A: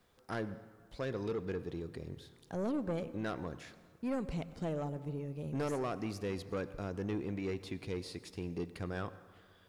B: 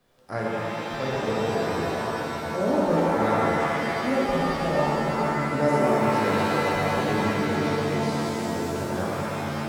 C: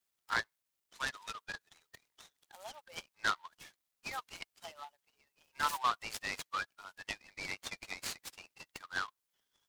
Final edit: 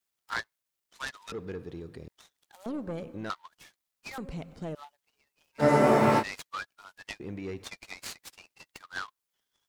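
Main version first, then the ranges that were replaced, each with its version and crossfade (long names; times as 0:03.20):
C
0:01.32–0:02.08: punch in from A
0:02.66–0:03.30: punch in from A
0:04.18–0:04.75: punch in from A
0:05.61–0:06.21: punch in from B, crossfade 0.06 s
0:07.20–0:07.64: punch in from A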